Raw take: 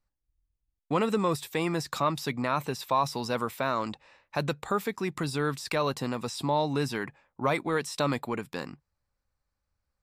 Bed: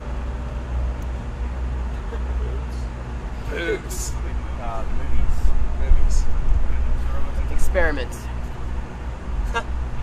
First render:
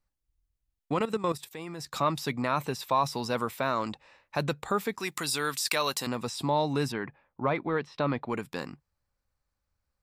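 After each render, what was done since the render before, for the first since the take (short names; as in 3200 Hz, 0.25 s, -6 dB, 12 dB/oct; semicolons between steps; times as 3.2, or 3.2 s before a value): 0.93–1.94 level quantiser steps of 13 dB; 5–6.07 tilt +3.5 dB/oct; 6.92–8.3 air absorption 290 m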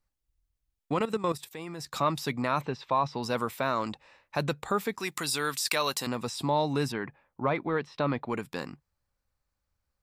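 2.61–3.23 air absorption 190 m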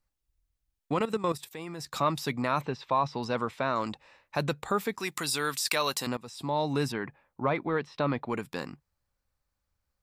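3.24–3.76 air absorption 91 m; 6.17–6.73 fade in, from -16 dB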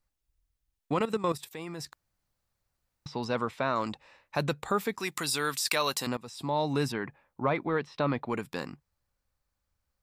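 1.93–3.06 room tone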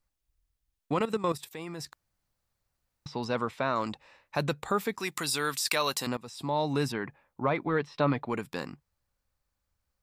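7.63–8.23 comb 6.9 ms, depth 40%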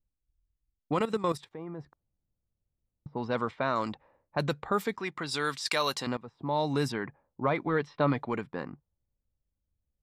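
notch 2600 Hz, Q 14; low-pass opened by the level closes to 360 Hz, open at -24 dBFS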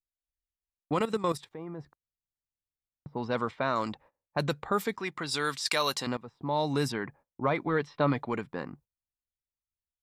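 high shelf 5500 Hz +4.5 dB; gate -54 dBFS, range -20 dB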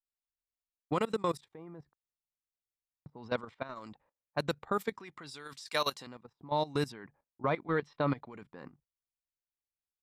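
level quantiser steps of 14 dB; upward expander 1.5:1, over -38 dBFS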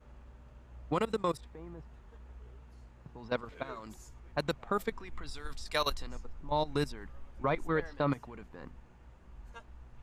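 add bed -26 dB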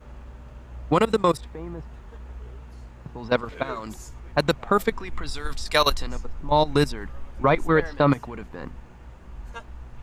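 gain +11.5 dB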